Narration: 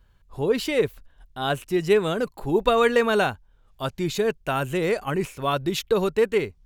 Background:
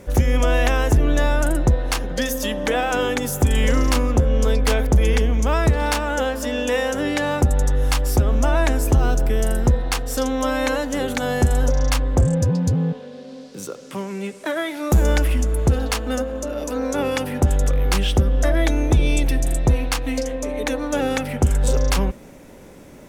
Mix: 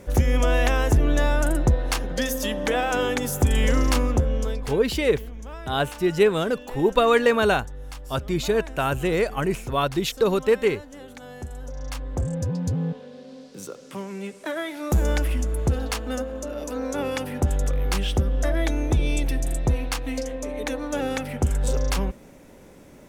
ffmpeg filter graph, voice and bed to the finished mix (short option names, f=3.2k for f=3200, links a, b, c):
-filter_complex "[0:a]adelay=4300,volume=1dB[a];[1:a]volume=11dB,afade=t=out:st=4.05:d=0.72:silence=0.158489,afade=t=in:st=11.64:d=1.22:silence=0.211349[b];[a][b]amix=inputs=2:normalize=0"